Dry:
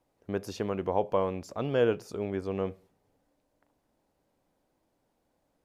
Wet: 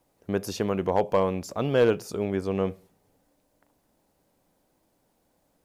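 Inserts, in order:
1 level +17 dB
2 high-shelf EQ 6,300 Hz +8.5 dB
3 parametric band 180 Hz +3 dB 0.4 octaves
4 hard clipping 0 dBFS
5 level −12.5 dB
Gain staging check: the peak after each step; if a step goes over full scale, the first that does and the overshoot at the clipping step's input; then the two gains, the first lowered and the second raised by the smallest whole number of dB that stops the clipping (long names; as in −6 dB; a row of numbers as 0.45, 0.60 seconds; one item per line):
+3.5, +3.5, +4.0, 0.0, −12.5 dBFS
step 1, 4.0 dB
step 1 +13 dB, step 5 −8.5 dB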